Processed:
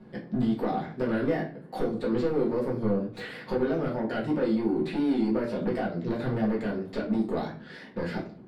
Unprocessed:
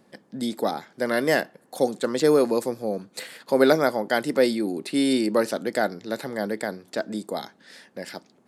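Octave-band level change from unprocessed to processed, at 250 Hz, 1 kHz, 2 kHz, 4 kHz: -1.0, -6.0, -9.5, -12.5 dB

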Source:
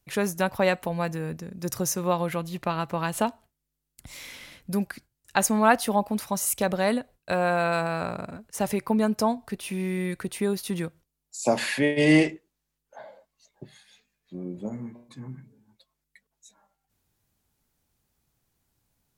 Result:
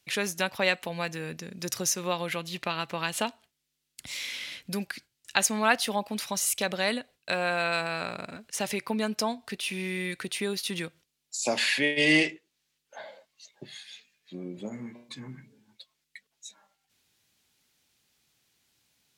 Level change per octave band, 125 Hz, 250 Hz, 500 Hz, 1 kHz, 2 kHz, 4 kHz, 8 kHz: -8.0, -7.0, -5.5, -5.0, +2.0, +6.0, +1.0 dB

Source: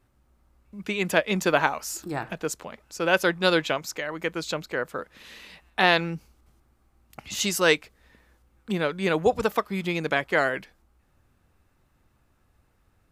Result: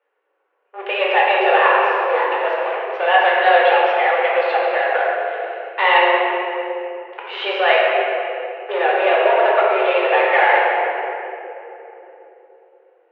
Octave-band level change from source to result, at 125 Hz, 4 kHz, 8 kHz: under -40 dB, +5.0 dB, under -30 dB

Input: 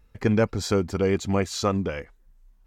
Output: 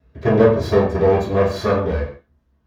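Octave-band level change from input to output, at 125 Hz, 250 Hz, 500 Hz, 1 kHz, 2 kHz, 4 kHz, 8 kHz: +5.5 dB, +4.0 dB, +10.0 dB, +8.0 dB, +4.5 dB, -1.0 dB, n/a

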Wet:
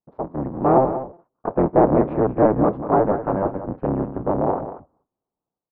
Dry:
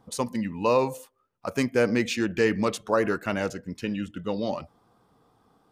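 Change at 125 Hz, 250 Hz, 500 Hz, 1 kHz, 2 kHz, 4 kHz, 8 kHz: +8.5 dB, +6.0 dB, +6.5 dB, +9.5 dB, -8.5 dB, under -25 dB, under -40 dB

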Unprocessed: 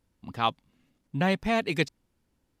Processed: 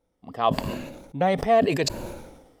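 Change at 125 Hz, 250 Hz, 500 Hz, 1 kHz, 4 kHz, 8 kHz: +2.0, +2.5, +8.5, +6.0, +1.5, +11.5 dB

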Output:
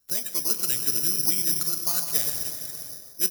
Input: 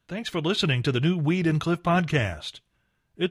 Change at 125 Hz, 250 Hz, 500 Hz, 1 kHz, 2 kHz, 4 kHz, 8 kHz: -19.0, -15.5, -14.0, -14.0, -12.5, -1.0, +20.5 dB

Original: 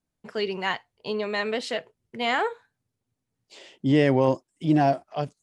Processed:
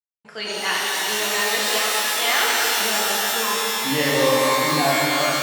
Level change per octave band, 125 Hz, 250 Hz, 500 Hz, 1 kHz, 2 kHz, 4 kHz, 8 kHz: -4.0, -2.5, +3.0, +7.0, +11.0, +15.0, +28.5 dB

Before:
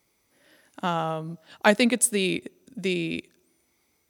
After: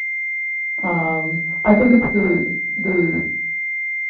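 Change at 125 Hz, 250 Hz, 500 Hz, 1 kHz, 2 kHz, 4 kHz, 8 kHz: +9.5 dB, +10.5 dB, +7.0 dB, +4.0 dB, +13.5 dB, under -20 dB, under -30 dB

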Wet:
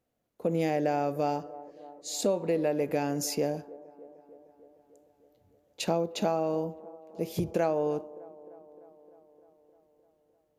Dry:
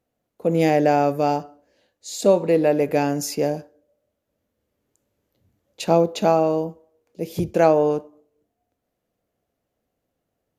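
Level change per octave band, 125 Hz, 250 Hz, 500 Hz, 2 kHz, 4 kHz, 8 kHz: -8.5, -9.0, -10.0, -9.5, -4.5, -4.0 dB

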